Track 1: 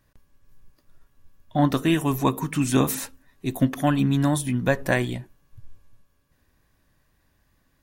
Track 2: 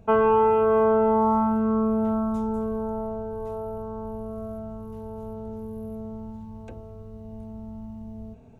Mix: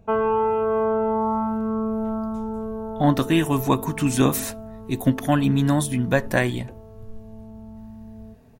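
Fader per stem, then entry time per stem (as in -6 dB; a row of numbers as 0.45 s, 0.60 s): +1.5 dB, -2.0 dB; 1.45 s, 0.00 s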